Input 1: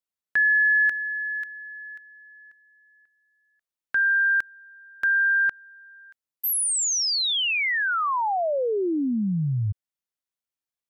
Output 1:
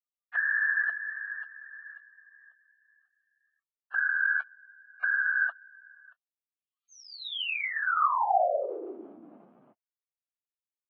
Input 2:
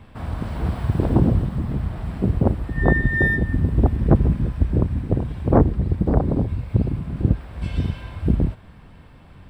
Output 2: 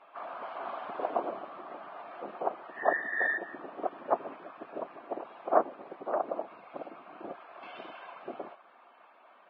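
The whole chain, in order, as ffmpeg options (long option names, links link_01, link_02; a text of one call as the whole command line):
ffmpeg -i in.wav -af "afftfilt=real='hypot(re,im)*cos(2*PI*random(0))':imag='hypot(re,im)*sin(2*PI*random(1))':win_size=512:overlap=0.75,highpass=frequency=450:width=0.5412,highpass=frequency=450:width=1.3066,equalizer=frequency=460:width_type=q:width=4:gain=-6,equalizer=frequency=690:width_type=q:width=4:gain=8,equalizer=frequency=1200:width_type=q:width=4:gain=8,equalizer=frequency=1900:width_type=q:width=4:gain=-5,lowpass=frequency=3000:width=0.5412,lowpass=frequency=3000:width=1.3066" -ar 16000 -c:a libvorbis -b:a 16k out.ogg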